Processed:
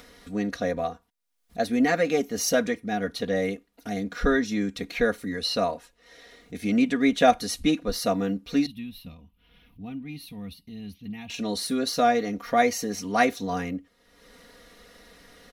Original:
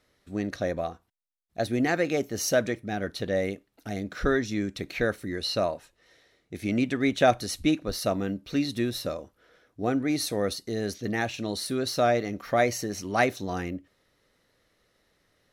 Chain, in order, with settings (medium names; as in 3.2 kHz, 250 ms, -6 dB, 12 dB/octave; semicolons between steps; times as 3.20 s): 8.66–11.30 s: FFT filter 150 Hz 0 dB, 520 Hz -28 dB, 910 Hz -15 dB, 1.6 kHz -26 dB, 2.7 kHz -4 dB, 7.1 kHz -30 dB, 13 kHz -8 dB; upward compressor, threshold -40 dBFS; comb 4.2 ms, depth 81%